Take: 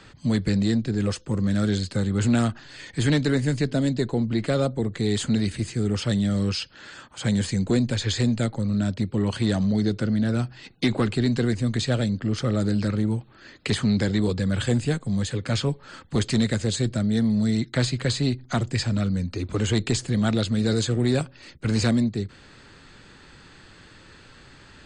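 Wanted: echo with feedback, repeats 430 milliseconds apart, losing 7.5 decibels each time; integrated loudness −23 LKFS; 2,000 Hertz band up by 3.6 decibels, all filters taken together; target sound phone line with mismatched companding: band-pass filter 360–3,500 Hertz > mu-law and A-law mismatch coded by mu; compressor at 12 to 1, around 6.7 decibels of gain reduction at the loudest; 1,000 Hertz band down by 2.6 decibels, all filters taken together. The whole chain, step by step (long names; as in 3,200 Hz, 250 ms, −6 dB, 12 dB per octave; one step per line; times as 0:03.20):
parametric band 1,000 Hz −6.5 dB
parametric band 2,000 Hz +7 dB
downward compressor 12 to 1, threshold −24 dBFS
band-pass filter 360–3,500 Hz
repeating echo 430 ms, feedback 42%, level −7.5 dB
mu-law and A-law mismatch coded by mu
level +10.5 dB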